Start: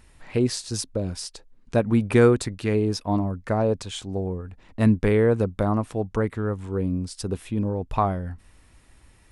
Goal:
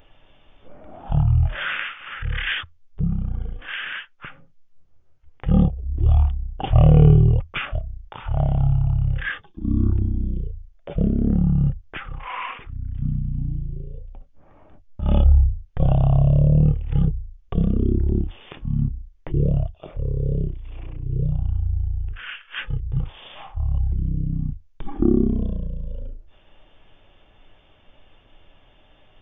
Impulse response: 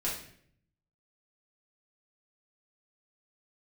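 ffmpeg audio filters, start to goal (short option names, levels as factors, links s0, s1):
-af "asetrate=14068,aresample=44100,highshelf=f=7100:g=8.5,volume=1.41"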